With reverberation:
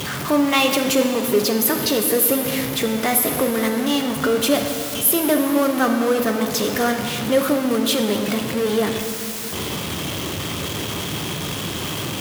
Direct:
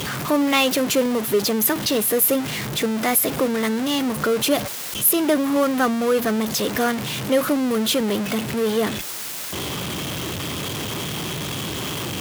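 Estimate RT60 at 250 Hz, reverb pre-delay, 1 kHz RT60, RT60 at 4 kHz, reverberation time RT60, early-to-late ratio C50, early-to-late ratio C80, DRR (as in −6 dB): 3.5 s, 7 ms, 2.6 s, 2.4 s, 2.8 s, 6.0 dB, 6.5 dB, 4.5 dB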